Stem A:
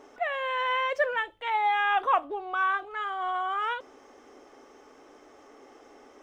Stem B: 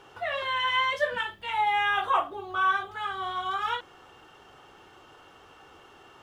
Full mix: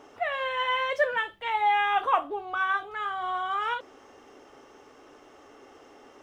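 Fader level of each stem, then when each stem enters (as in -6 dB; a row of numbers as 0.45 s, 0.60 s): 0.0 dB, -8.0 dB; 0.00 s, 0.00 s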